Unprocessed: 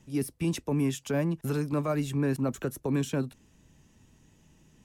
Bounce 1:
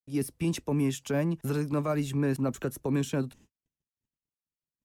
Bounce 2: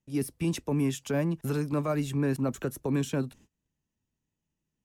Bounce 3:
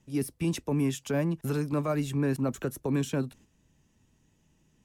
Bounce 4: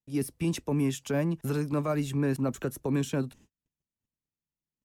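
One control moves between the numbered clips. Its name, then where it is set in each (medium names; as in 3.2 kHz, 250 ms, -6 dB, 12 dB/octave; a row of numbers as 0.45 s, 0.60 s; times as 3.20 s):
gate, range: -59 dB, -25 dB, -7 dB, -38 dB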